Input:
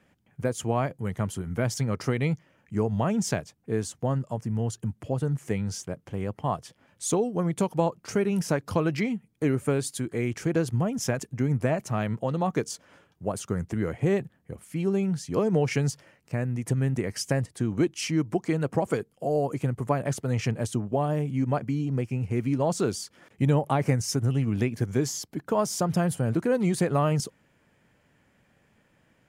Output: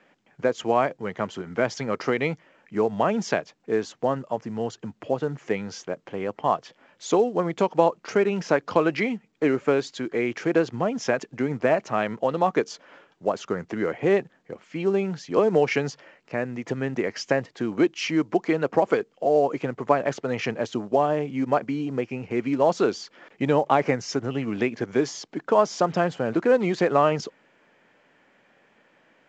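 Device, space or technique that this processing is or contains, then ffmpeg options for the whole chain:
telephone: -af "highpass=330,lowpass=3600,volume=2.24" -ar 16000 -c:a pcm_mulaw

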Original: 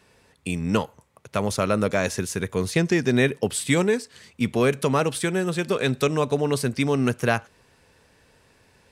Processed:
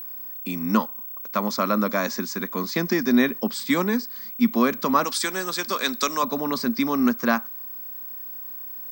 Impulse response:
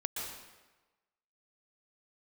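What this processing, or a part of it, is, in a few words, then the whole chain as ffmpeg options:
old television with a line whistle: -filter_complex "[0:a]asettb=1/sr,asplit=3[s0][s1][s2];[s0]atrim=end=5.044[s3];[s1]atrim=start=5.04:end=6.23,asetpts=PTS-STARTPTS,afade=t=in:d=0.004:c=qsin,afade=t=out:st=1.186:d=0.004:c=qsin,aemphasis=mode=production:type=riaa[s4];[s2]atrim=start=6.226[s5];[s3][s4]acrossfade=d=0.004:c1=hsin:c2=qsin[s6];[s6][s5]acrossfade=d=0.004:c1=qsin:c2=hsin,highpass=160,highpass=f=190:w=0.5412,highpass=f=190:w=1.3066,equalizer=f=230:t=q:w=4:g=9,equalizer=f=440:t=q:w=4:g=-9,equalizer=f=750:t=q:w=4:g=-3,equalizer=f=1100:t=q:w=4:g=9,equalizer=f=2800:t=q:w=4:g=-10,equalizer=f=4900:t=q:w=4:g=6,lowpass=f=6500:w=0.5412,lowpass=f=6500:w=1.3066,aeval=exprs='val(0)+0.0224*sin(2*PI*15734*n/s)':c=same"

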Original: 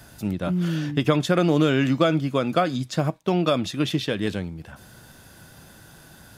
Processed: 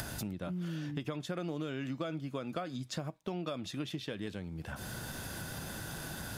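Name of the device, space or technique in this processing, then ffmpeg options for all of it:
upward and downward compression: -af "acompressor=mode=upward:threshold=0.0562:ratio=2.5,acompressor=threshold=0.0224:ratio=4,volume=0.631"

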